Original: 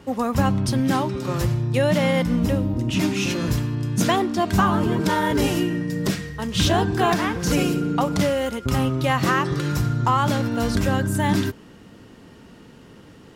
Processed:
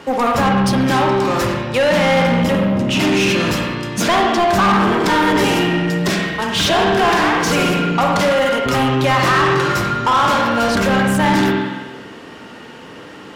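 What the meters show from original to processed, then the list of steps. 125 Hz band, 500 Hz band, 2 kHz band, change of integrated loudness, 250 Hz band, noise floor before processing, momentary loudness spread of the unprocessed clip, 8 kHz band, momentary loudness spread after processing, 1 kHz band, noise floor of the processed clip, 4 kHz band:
+1.0 dB, +8.0 dB, +10.5 dB, +6.5 dB, +4.5 dB, −47 dBFS, 5 LU, +5.0 dB, 5 LU, +9.0 dB, −36 dBFS, +9.0 dB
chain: spring reverb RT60 1.2 s, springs 46/56 ms, chirp 75 ms, DRR 1.5 dB
mid-hump overdrive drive 23 dB, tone 3,900 Hz, clips at −4 dBFS
level −2.5 dB

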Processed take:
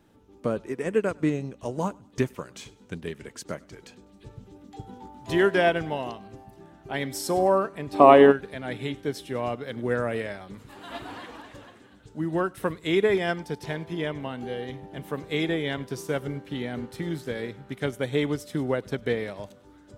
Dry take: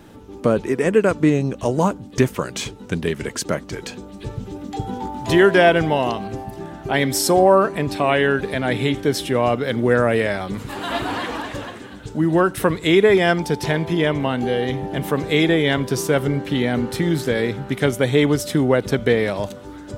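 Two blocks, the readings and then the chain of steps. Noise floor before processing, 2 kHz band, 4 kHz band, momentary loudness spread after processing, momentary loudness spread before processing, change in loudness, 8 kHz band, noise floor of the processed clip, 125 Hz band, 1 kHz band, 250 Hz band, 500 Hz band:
−38 dBFS, −9.5 dB, −10.5 dB, 18 LU, 15 LU, −6.5 dB, −13.0 dB, −54 dBFS, −11.0 dB, −5.0 dB, −8.5 dB, −6.5 dB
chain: feedback echo with a high-pass in the loop 101 ms, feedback 39%, level −20 dB
gain on a spectral selection 0:07.94–0:08.32, 210–1,300 Hz +11 dB
expander for the loud parts 1.5 to 1, over −28 dBFS
level −5 dB

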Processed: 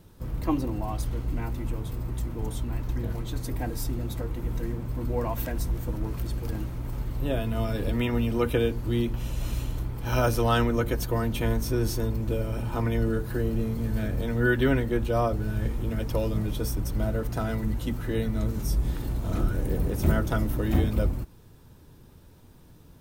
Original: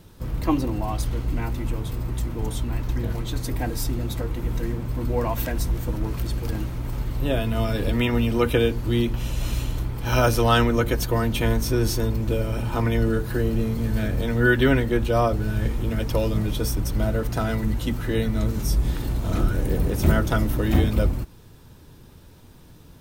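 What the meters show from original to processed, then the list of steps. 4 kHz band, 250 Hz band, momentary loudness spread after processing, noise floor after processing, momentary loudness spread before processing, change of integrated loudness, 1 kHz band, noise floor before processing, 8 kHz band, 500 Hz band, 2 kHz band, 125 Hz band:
−7.5 dB, −4.0 dB, 8 LU, −52 dBFS, 8 LU, −4.5 dB, −5.0 dB, −47 dBFS, −6.0 dB, −4.5 dB, −6.0 dB, −4.0 dB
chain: parametric band 3,600 Hz −3.5 dB 2.5 octaves
level −4 dB

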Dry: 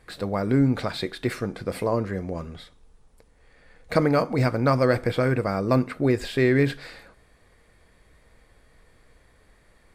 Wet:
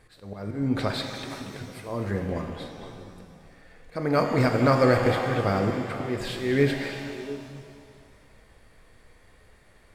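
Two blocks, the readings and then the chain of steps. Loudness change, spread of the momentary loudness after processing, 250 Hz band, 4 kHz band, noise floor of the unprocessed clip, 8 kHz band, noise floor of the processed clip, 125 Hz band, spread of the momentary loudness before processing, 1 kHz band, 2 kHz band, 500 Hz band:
−2.0 dB, 18 LU, −2.5 dB, +1.0 dB, −59 dBFS, can't be measured, −56 dBFS, −2.5 dB, 10 LU, +0.5 dB, −0.5 dB, −1.5 dB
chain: volume swells 291 ms
echo through a band-pass that steps 232 ms, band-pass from 2,500 Hz, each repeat −1.4 octaves, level −6.5 dB
reverb with rising layers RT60 2 s, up +7 semitones, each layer −8 dB, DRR 4.5 dB

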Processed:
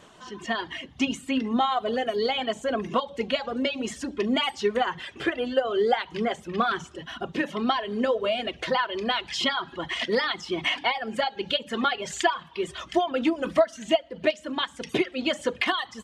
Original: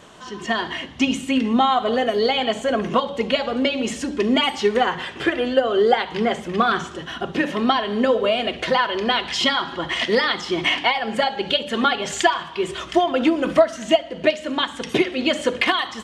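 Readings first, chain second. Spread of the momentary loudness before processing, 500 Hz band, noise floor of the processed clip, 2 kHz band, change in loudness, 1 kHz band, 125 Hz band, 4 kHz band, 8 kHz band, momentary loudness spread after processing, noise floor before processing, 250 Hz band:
6 LU, −6.0 dB, −50 dBFS, −6.0 dB, −6.0 dB, −6.0 dB, −6.5 dB, −6.0 dB, −6.0 dB, 6 LU, −37 dBFS, −6.5 dB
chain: reverb reduction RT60 0.63 s
level −5.5 dB

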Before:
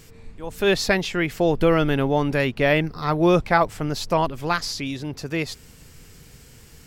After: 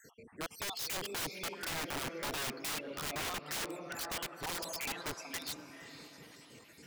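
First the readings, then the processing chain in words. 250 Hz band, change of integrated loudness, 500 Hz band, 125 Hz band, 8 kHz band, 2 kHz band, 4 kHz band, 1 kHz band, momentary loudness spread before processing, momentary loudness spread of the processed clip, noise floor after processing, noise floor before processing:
−23.0 dB, −16.5 dB, −23.0 dB, −24.5 dB, −3.5 dB, −15.0 dB, −9.0 dB, −17.5 dB, 11 LU, 14 LU, −59 dBFS, −48 dBFS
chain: time-frequency cells dropped at random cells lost 60%
reverb reduction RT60 0.87 s
high-shelf EQ 5,800 Hz −8.5 dB
downward compressor 6 to 1, threshold −27 dBFS, peak gain reduction 12.5 dB
high-pass filter 240 Hz 12 dB per octave
feedback delay with all-pass diffusion 501 ms, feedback 45%, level −13 dB
wrap-around overflow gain 32.5 dB

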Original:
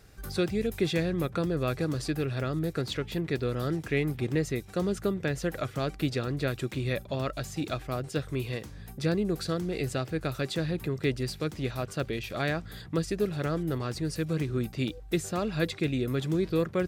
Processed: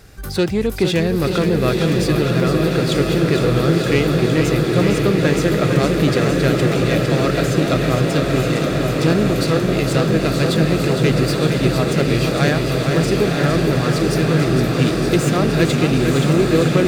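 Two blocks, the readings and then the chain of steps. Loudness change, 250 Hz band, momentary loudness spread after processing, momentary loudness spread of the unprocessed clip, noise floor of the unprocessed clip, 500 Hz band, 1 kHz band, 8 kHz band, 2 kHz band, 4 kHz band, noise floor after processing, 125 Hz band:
+14.0 dB, +14.0 dB, 2 LU, 5 LU, −46 dBFS, +14.0 dB, +14.5 dB, +14.0 dB, +14.0 dB, +14.5 dB, −21 dBFS, +14.5 dB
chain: phase distortion by the signal itself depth 0.078 ms
in parallel at −8 dB: hard clipping −27 dBFS, distortion −11 dB
on the sum: feedback delay with all-pass diffusion 1,010 ms, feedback 75%, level −4.5 dB
feedback echo with a swinging delay time 460 ms, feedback 78%, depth 52 cents, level −7 dB
level +8 dB

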